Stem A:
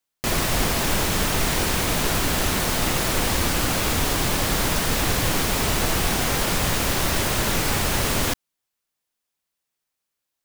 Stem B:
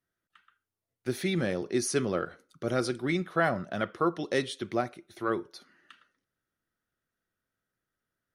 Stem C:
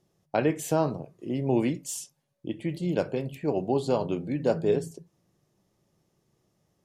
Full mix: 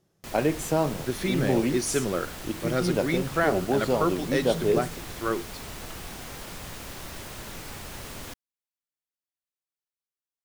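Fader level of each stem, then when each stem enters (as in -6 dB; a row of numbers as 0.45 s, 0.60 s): -17.0 dB, +1.5 dB, +0.5 dB; 0.00 s, 0.00 s, 0.00 s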